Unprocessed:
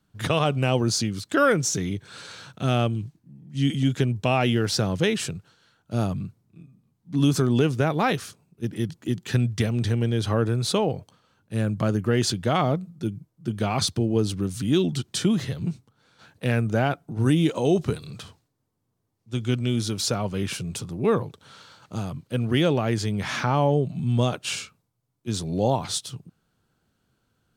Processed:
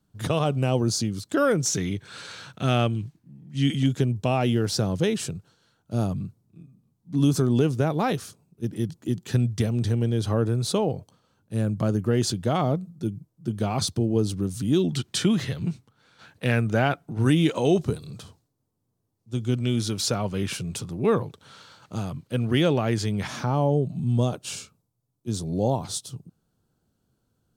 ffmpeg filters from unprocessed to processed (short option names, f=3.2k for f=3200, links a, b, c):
-af "asetnsamples=n=441:p=0,asendcmd='1.66 equalizer g 2;3.86 equalizer g -7;14.91 equalizer g 3;17.82 equalizer g -8;19.57 equalizer g -0.5;23.27 equalizer g -11',equalizer=f=2.1k:t=o:w=1.9:g=-7.5"